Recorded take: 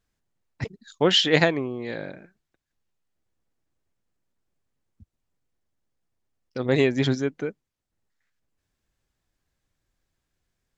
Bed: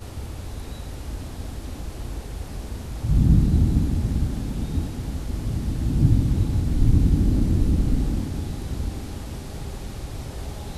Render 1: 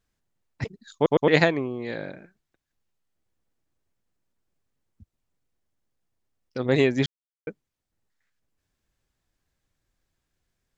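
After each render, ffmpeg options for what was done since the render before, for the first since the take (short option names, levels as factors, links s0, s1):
-filter_complex "[0:a]asplit=6[s0][s1][s2][s3][s4][s5];[s0]atrim=end=1.062[s6];[s1]atrim=start=0.948:end=1.062[s7];[s2]atrim=start=0.948:end=1.062[s8];[s3]atrim=start=1.278:end=7.06,asetpts=PTS-STARTPTS,afade=t=out:st=5.778:d=0.004:c=hsin[s9];[s4]atrim=start=7.06:end=7.47,asetpts=PTS-STARTPTS,volume=0[s10];[s5]atrim=start=7.47,asetpts=PTS-STARTPTS,afade=t=in:d=0.004:c=hsin[s11];[s6][s7]acrossfade=d=0.004:c1=hsin:c2=hsin[s12];[s12][s8]acrossfade=d=0.004:c1=hsin:c2=hsin[s13];[s9][s10][s11]concat=n=3:v=0:a=1[s14];[s13][s14]acrossfade=d=0.004:c1=hsin:c2=hsin"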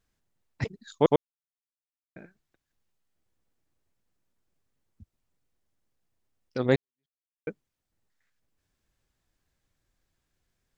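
-filter_complex "[0:a]asplit=4[s0][s1][s2][s3];[s0]atrim=end=1.16,asetpts=PTS-STARTPTS,afade=t=out:st=1.156:d=0.004:c=hsin[s4];[s1]atrim=start=1.16:end=2.16,asetpts=PTS-STARTPTS,volume=0[s5];[s2]atrim=start=2.16:end=6.76,asetpts=PTS-STARTPTS,afade=t=in:d=0.004:c=hsin,afade=t=out:st=4.596:d=0.004:c=hsin[s6];[s3]atrim=start=6.76,asetpts=PTS-STARTPTS,afade=t=in:d=0.72:c=exp[s7];[s4][s5][s6][s7]concat=n=4:v=0:a=1"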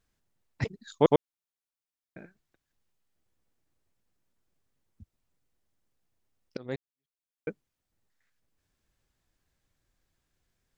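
-filter_complex "[0:a]asplit=2[s0][s1];[s0]atrim=end=6.57,asetpts=PTS-STARTPTS,afade=t=out:st=6.566:d=0.004:c=hsin:silence=0.0749894[s2];[s1]atrim=start=6.57,asetpts=PTS-STARTPTS,afade=t=in:d=0.93:silence=0.0749894[s3];[s2][s3]concat=n=2:v=0:a=1"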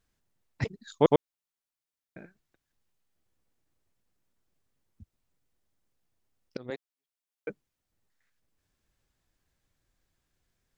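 -filter_complex "[0:a]asettb=1/sr,asplit=3[s0][s1][s2];[s0]atrim=end=6.704[s3];[s1]atrim=start=6.7:end=7.5,asetpts=PTS-STARTPTS,afade=t=in:d=0.004:c=qsin,afade=t=out:st=0.796:d=0.004:c=qsin,highpass=340[s4];[s2]atrim=start=7.496[s5];[s3][s4]acrossfade=d=0.004:c1=hsin:c2=qsin[s6];[s6][s5]acrossfade=d=0.004:c1=qsin:c2=hsin"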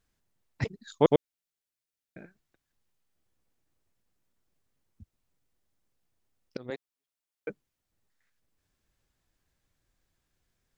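-filter_complex "[0:a]asettb=1/sr,asplit=3[s0][s1][s2];[s0]atrim=end=1.064[s3];[s1]atrim=start=1.06:end=2.21,asetpts=PTS-STARTPTS,afade=t=in:d=0.004:c=qsin,afade=t=out:st=1.146:d=0.004:c=qsin,equalizer=f=1000:w=2.6:g=-8.5[s4];[s2]atrim=start=2.206[s5];[s3][s4]acrossfade=d=0.004:c1=hsin:c2=qsin[s6];[s6][s5]acrossfade=d=0.004:c1=qsin:c2=hsin"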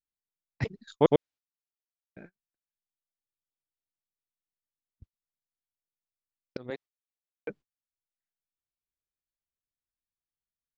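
-af "lowpass=5300,agate=range=0.0501:threshold=0.00355:ratio=16:detection=peak"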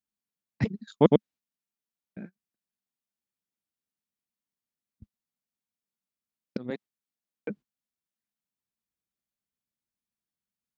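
-af "highpass=47,equalizer=f=210:w=1.9:g=13"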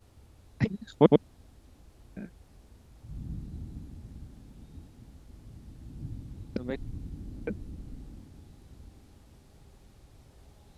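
-filter_complex "[1:a]volume=0.075[s0];[0:a][s0]amix=inputs=2:normalize=0"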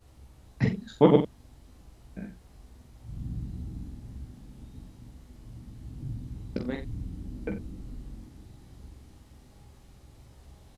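-filter_complex "[0:a]asplit=2[s0][s1];[s1]adelay=45,volume=0.398[s2];[s0][s2]amix=inputs=2:normalize=0,aecho=1:1:16|44:0.473|0.501"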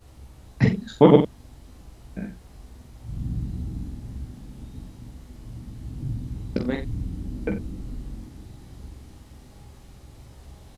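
-af "volume=2.11,alimiter=limit=0.891:level=0:latency=1"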